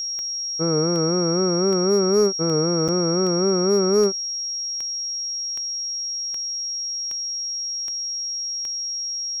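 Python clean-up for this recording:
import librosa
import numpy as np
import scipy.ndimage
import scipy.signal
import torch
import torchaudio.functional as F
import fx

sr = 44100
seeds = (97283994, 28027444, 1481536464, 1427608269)

y = fx.fix_declip(x, sr, threshold_db=-11.0)
y = fx.fix_declick_ar(y, sr, threshold=10.0)
y = fx.notch(y, sr, hz=5600.0, q=30.0)
y = fx.fix_interpolate(y, sr, at_s=(2.88,), length_ms=6.5)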